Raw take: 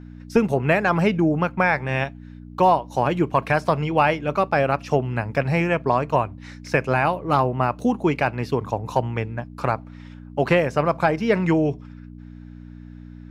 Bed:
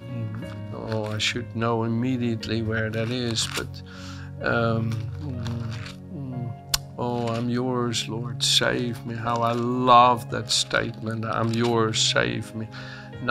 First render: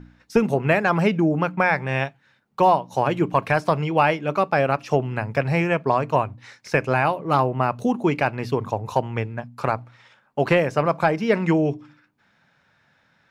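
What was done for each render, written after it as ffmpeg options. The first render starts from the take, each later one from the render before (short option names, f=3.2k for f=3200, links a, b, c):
-af "bandreject=f=60:t=h:w=4,bandreject=f=120:t=h:w=4,bandreject=f=180:t=h:w=4,bandreject=f=240:t=h:w=4,bandreject=f=300:t=h:w=4"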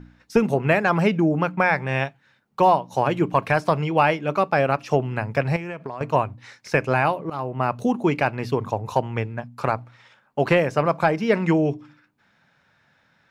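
-filter_complex "[0:a]asettb=1/sr,asplit=3[a][b][c];[a]atrim=end=5.564[d];[b]atrim=start=5.56:end=6.01,asetpts=PTS-STARTPTS,afade=t=in:d=0.004:c=qsin,afade=t=out:st=0.446:d=0.004:c=qsin,acompressor=threshold=-27dB:ratio=16:attack=3.2:release=140:knee=1:detection=peak[e];[c]atrim=start=6.006[f];[d][e]acrossfade=d=0.004:c1=hsin:c2=qsin[g];[g][f]acrossfade=d=0.004:c1=qsin:c2=hsin,asplit=2[h][i];[h]atrim=end=7.3,asetpts=PTS-STARTPTS,afade=t=out:st=7.296:d=0.004:c=hsin:silence=0.125893[j];[i]atrim=start=7.3,asetpts=PTS-STARTPTS,afade=t=in:d=0.41:silence=0.125893[k];[j][k]concat=n=2:v=0:a=1"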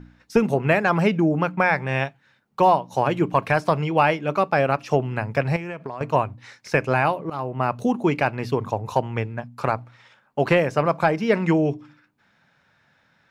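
-af anull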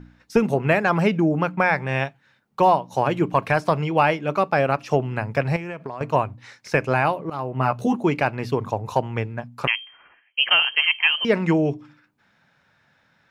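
-filter_complex "[0:a]asettb=1/sr,asplit=3[a][b][c];[a]atrim=end=7.534[d];[b]atrim=start=7.53:end=7.95,asetpts=PTS-STARTPTS,afade=t=in:d=0.004:c=qsin,afade=t=out:st=0.416:d=0.004:c=qsin,asplit=2[e][f];[f]adelay=15,volume=-4dB[g];[e][g]amix=inputs=2:normalize=0,atrim=end_sample=18522[h];[c]atrim=start=7.946[i];[d][h]acrossfade=d=0.004:c1=hsin:c2=qsin[j];[j][i]acrossfade=d=0.004:c1=qsin:c2=hsin,asettb=1/sr,asplit=3[k][l][m];[k]atrim=end=9.674[n];[l]atrim=start=9.67:end=11.25,asetpts=PTS-STARTPTS,afade=t=in:d=0.004:c=qsin,afade=t=out:st=1.576:d=0.004:c=qsin,lowpass=f=2.8k:t=q:w=0.5098,lowpass=f=2.8k:t=q:w=0.6013,lowpass=f=2.8k:t=q:w=0.9,lowpass=f=2.8k:t=q:w=2.563,afreqshift=-3300[o];[m]atrim=start=11.246[p];[n][o]acrossfade=d=0.004:c1=hsin:c2=qsin[q];[q][p]acrossfade=d=0.004:c1=qsin:c2=hsin"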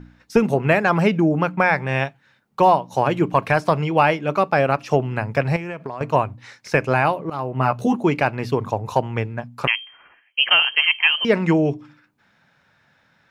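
-af "volume=2dB"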